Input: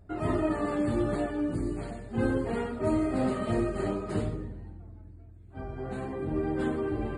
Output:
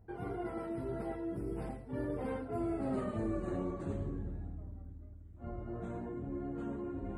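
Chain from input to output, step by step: Doppler pass-by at 3.01 s, 40 m/s, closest 18 m; peaking EQ 4.6 kHz -9.5 dB 2.6 oct; reverse; compression 4:1, threshold -49 dBFS, peak gain reduction 20 dB; reverse; trim +12 dB

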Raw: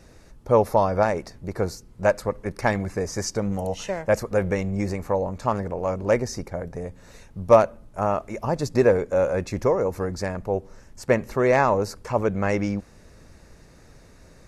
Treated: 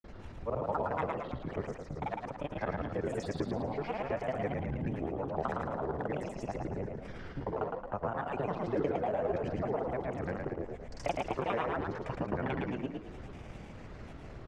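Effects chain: time reversed locally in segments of 53 ms; low-pass 2.9 kHz 12 dB/octave; compression 3:1, threshold -40 dBFS, peak gain reduction 22.5 dB; granulator, pitch spread up and down by 7 st; frequency-shifting echo 111 ms, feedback 49%, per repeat +39 Hz, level -4 dB; trim +3.5 dB

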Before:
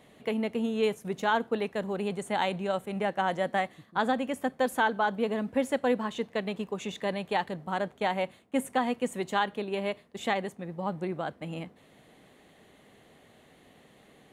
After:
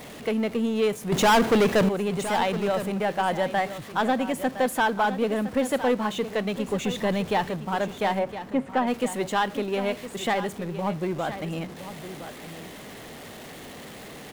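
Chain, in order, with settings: jump at every zero crossing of -40.5 dBFS; 1.12–1.89 s: waveshaping leveller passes 3; 6.68–7.47 s: bass shelf 150 Hz +11 dB; 8.18–8.86 s: low-pass 1.4 kHz -> 2.4 kHz 12 dB/octave; waveshaping leveller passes 1; delay 1013 ms -12 dB

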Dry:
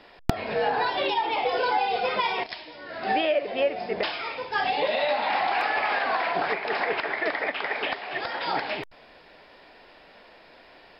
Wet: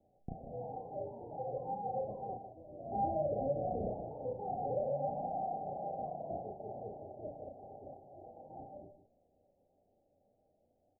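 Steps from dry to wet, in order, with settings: octave divider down 2 oct, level -1 dB; Doppler pass-by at 3.82 s, 14 m/s, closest 9.1 m; peak limiter -25.5 dBFS, peak gain reduction 10.5 dB; rippled Chebyshev low-pass 810 Hz, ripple 6 dB; doubling 34 ms -2.5 dB; delay 153 ms -11 dB

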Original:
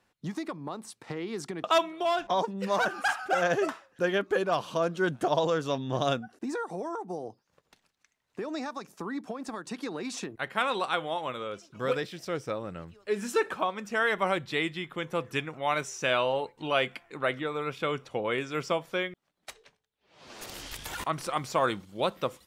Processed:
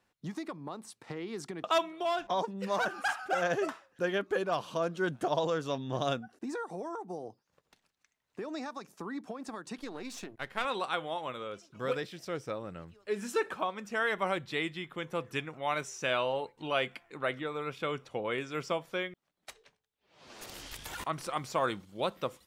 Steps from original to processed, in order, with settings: 9.78–10.65 s: partial rectifier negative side -7 dB; trim -4 dB

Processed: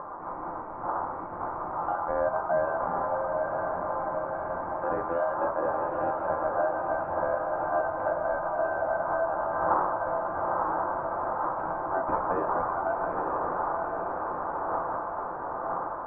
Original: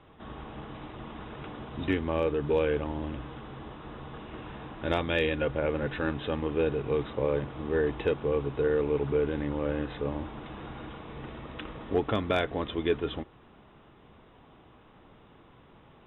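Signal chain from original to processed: rattle on loud lows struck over -36 dBFS, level -34 dBFS; wind noise 340 Hz -34 dBFS; upward compressor, threshold -40 dBFS; ring modulator 1.1 kHz; low-pass 1.1 kHz 24 dB/octave; echo that smears into a reverb 915 ms, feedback 60%, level -5 dB; compression 2:1, threshold -37 dBFS, peak gain reduction 10 dB; peaking EQ 500 Hz +4 dB 2.1 oct; reverberation, pre-delay 3 ms, DRR 4.5 dB; trim +4.5 dB

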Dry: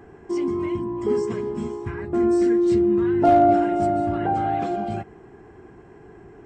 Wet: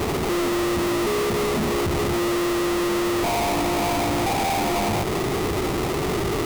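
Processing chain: compression, threshold -31 dBFS, peak gain reduction 17.5 dB; fuzz box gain 54 dB, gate -58 dBFS; sample-rate reducer 1.6 kHz, jitter 20%; trim -8.5 dB

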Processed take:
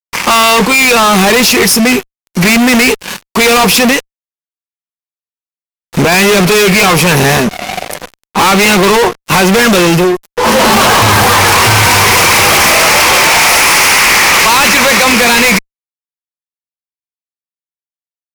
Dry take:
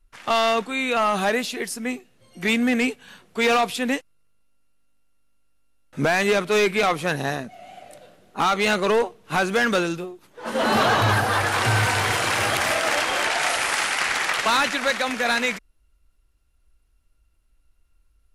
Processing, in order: rippled EQ curve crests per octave 0.82, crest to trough 8 dB; 3.90–6.12 s: compression 6:1, threshold -28 dBFS, peak gain reduction 10.5 dB; treble shelf 4.2 kHz +2.5 dB; band-stop 440 Hz, Q 12; fuzz box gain 39 dB, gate -44 dBFS; trim +7 dB

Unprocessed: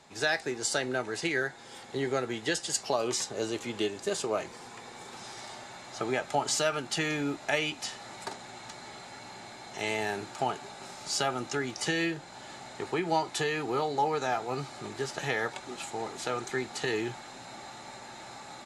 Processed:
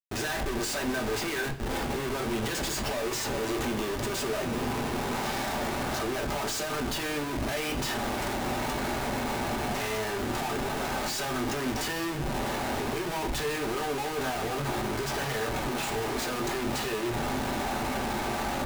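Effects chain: in parallel at -0.5 dB: compression 16:1, threshold -40 dBFS, peak gain reduction 18.5 dB; 4.03–5.01 s: on the sum: bass shelf 430 Hz +7.5 dB; Schmitt trigger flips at -39.5 dBFS; on a send at -2 dB: tone controls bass +5 dB, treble -5 dB + reverberation, pre-delay 3 ms; on the sum: trim -1.5 dB

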